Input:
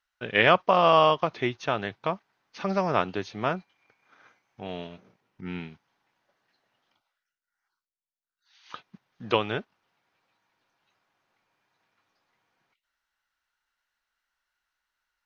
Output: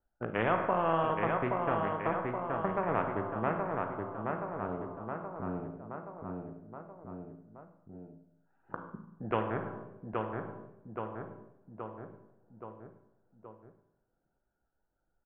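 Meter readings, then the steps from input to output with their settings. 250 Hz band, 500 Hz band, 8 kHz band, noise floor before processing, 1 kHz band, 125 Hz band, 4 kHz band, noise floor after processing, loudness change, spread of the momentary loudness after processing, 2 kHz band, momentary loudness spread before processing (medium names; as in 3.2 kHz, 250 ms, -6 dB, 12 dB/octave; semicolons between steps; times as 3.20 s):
-2.5 dB, -6.0 dB, no reading, under -85 dBFS, -5.5 dB, -2.0 dB, -20.5 dB, -81 dBFS, -10.0 dB, 20 LU, -9.0 dB, 19 LU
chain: local Wiener filter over 41 samples; low-pass 1.2 kHz 24 dB/octave; reverb removal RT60 0.81 s; in parallel at 0 dB: peak limiter -18 dBFS, peak gain reduction 8.5 dB; on the sum: wow and flutter 27 cents; feedback comb 55 Hz, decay 0.46 s, harmonics all, mix 60%; on a send: feedback delay 824 ms, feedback 42%, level -7 dB; on the sum: Schroeder reverb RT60 0.78 s, combs from 33 ms, DRR 9 dB; spectrum-flattening compressor 2:1; trim -5.5 dB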